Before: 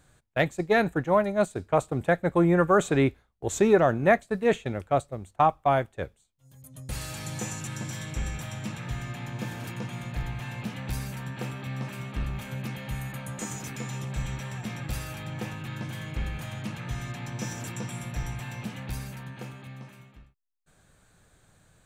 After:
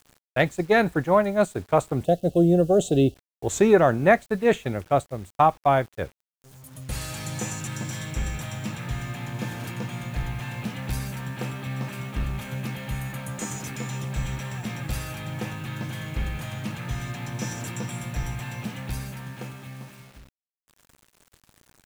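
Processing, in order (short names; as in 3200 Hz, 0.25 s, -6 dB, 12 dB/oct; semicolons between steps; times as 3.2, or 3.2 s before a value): bit-crush 9-bit; spectral gain 2.05–3.16, 780–2600 Hz -23 dB; gain +3 dB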